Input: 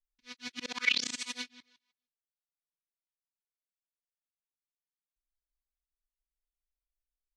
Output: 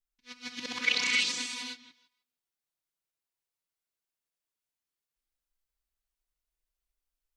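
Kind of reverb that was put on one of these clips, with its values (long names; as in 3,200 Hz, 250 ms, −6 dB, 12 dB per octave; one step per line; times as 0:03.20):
reverb whose tail is shaped and stops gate 330 ms rising, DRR −2 dB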